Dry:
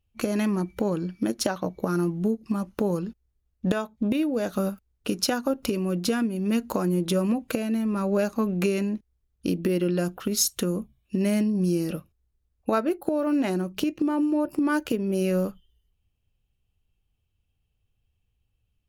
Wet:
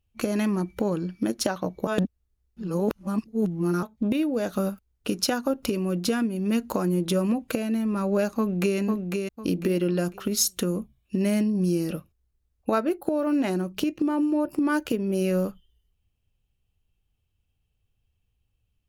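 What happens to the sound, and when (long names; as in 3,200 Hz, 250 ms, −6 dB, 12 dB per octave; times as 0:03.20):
0:01.87–0:03.83: reverse
0:08.37–0:08.78: delay throw 500 ms, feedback 30%, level −4.5 dB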